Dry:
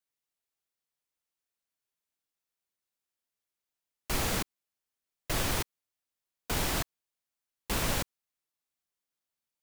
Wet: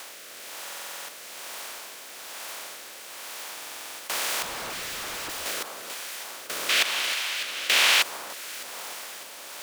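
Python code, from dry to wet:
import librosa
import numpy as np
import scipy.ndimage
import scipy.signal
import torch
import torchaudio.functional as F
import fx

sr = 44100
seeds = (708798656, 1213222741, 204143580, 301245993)

p1 = fx.bin_compress(x, sr, power=0.2)
p2 = scipy.signal.sosfilt(scipy.signal.butter(2, 690.0, 'highpass', fs=sr, output='sos'), p1)
p3 = p2 + 10.0 ** (-14.0 / 20.0) * np.pad(p2, (int(314 * sr / 1000.0), 0))[:len(p2)]
p4 = fx.rotary(p3, sr, hz=1.1)
p5 = fx.echo_alternate(p4, sr, ms=301, hz=1400.0, feedback_pct=69, wet_db=-8)
p6 = fx.over_compress(p5, sr, threshold_db=-31.0, ratio=-1.0)
p7 = p5 + (p6 * librosa.db_to_amplitude(-2.0))
p8 = fx.schmitt(p7, sr, flips_db=-39.5, at=(4.42, 5.46))
p9 = fx.peak_eq(p8, sr, hz=2800.0, db=14.5, octaves=2.0, at=(6.69, 8.02))
p10 = fx.buffer_glitch(p9, sr, at_s=(0.62, 3.53), block=2048, repeats=9)
y = p10 * librosa.db_to_amplitude(-3.0)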